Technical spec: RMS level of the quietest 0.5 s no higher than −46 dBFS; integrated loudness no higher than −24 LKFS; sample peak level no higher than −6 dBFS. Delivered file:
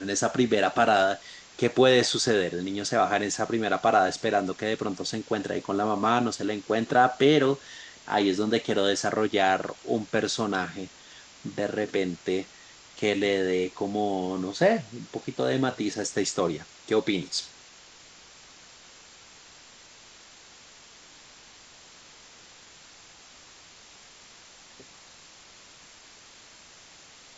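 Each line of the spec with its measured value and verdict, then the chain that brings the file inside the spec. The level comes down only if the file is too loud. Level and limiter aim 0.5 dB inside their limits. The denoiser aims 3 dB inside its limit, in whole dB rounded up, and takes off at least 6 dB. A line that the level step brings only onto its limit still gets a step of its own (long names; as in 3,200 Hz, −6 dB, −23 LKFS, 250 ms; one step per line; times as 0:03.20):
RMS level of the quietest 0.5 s −51 dBFS: in spec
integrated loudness −26.0 LKFS: in spec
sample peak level −7.5 dBFS: in spec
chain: no processing needed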